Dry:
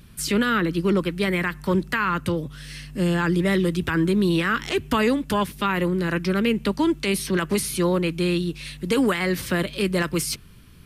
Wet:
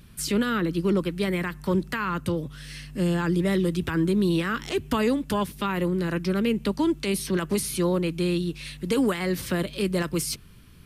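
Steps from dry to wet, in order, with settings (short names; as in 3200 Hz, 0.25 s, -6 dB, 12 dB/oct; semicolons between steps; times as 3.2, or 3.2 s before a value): dynamic EQ 1900 Hz, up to -5 dB, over -35 dBFS, Q 0.77; gain -2 dB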